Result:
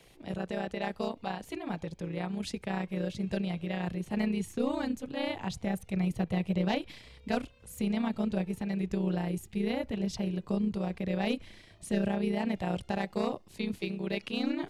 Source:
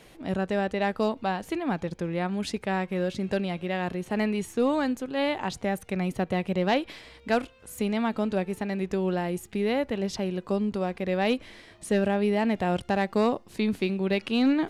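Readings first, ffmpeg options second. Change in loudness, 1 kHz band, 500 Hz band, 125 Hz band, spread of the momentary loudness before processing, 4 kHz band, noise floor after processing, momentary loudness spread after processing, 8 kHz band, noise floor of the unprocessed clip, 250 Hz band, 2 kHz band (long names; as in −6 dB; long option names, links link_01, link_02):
−5.5 dB, −8.0 dB, −8.0 dB, −2.0 dB, 6 LU, −5.0 dB, −57 dBFS, 7 LU, −4.5 dB, −53 dBFS, −4.0 dB, −7.5 dB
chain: -filter_complex "[0:a]acrossover=split=230|1600[link_01][link_02][link_03];[link_01]dynaudnorm=framelen=330:gausssize=17:maxgain=7dB[link_04];[link_02]aeval=exprs='val(0)*sin(2*PI*30*n/s)':channel_layout=same[link_05];[link_04][link_05][link_03]amix=inputs=3:normalize=0,volume=-4.5dB"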